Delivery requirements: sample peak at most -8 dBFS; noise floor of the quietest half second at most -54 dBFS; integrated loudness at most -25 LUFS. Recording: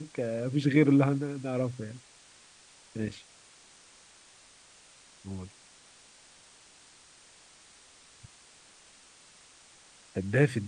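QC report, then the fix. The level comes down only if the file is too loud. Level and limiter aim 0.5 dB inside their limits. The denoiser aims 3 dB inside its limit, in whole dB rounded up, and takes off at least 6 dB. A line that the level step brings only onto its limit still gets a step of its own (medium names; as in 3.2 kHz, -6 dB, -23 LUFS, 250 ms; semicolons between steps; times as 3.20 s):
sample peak -10.0 dBFS: pass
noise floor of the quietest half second -57 dBFS: pass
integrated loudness -29.5 LUFS: pass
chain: none needed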